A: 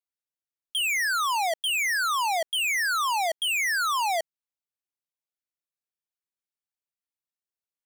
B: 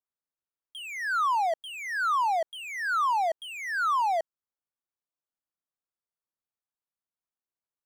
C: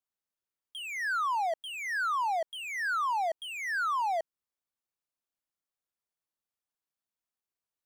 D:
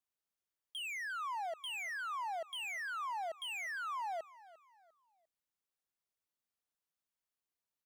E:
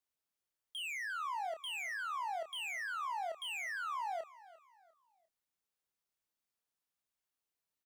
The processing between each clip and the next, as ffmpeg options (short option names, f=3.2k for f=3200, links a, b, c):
-filter_complex "[0:a]acrossover=split=6400[a][b];[b]acompressor=threshold=-43dB:ratio=4:attack=1:release=60[c];[a][c]amix=inputs=2:normalize=0,highshelf=f=1.8k:t=q:w=1.5:g=-10,volume=-1dB"
-af "acompressor=threshold=-28dB:ratio=6"
-af "alimiter=level_in=10.5dB:limit=-24dB:level=0:latency=1,volume=-10.5dB,aecho=1:1:349|698|1047:0.112|0.0404|0.0145,volume=-2dB"
-filter_complex "[0:a]asplit=2[a][b];[b]adelay=29,volume=-8dB[c];[a][c]amix=inputs=2:normalize=0"